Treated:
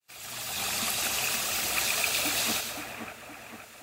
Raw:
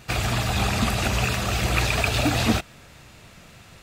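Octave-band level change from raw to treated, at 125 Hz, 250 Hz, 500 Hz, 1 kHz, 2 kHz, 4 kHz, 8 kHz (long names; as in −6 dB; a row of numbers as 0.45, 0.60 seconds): −24.0, −15.0, −10.5, −8.5, −5.0, −2.0, +3.0 decibels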